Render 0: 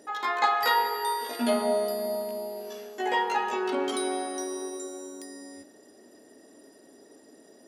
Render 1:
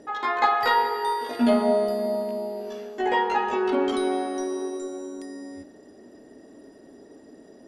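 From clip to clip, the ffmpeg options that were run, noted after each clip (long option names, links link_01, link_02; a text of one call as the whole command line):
ffmpeg -i in.wav -af "aemphasis=mode=reproduction:type=bsi,volume=3dB" out.wav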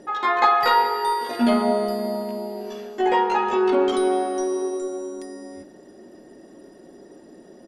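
ffmpeg -i in.wav -af "aecho=1:1:5.6:0.43,volume=2.5dB" out.wav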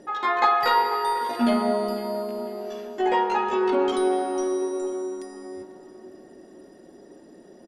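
ffmpeg -i in.wav -filter_complex "[0:a]asplit=2[link_01][link_02];[link_02]adelay=495,lowpass=frequency=2600:poles=1,volume=-13.5dB,asplit=2[link_03][link_04];[link_04]adelay=495,lowpass=frequency=2600:poles=1,volume=0.5,asplit=2[link_05][link_06];[link_06]adelay=495,lowpass=frequency=2600:poles=1,volume=0.5,asplit=2[link_07][link_08];[link_08]adelay=495,lowpass=frequency=2600:poles=1,volume=0.5,asplit=2[link_09][link_10];[link_10]adelay=495,lowpass=frequency=2600:poles=1,volume=0.5[link_11];[link_01][link_03][link_05][link_07][link_09][link_11]amix=inputs=6:normalize=0,volume=-2.5dB" out.wav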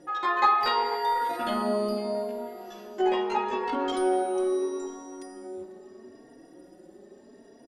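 ffmpeg -i in.wav -filter_complex "[0:a]asplit=2[link_01][link_02];[link_02]adelay=3.7,afreqshift=0.76[link_03];[link_01][link_03]amix=inputs=2:normalize=1" out.wav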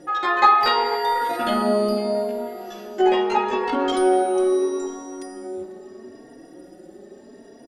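ffmpeg -i in.wav -af "asuperstop=centerf=1000:order=4:qfactor=7.8,volume=7dB" out.wav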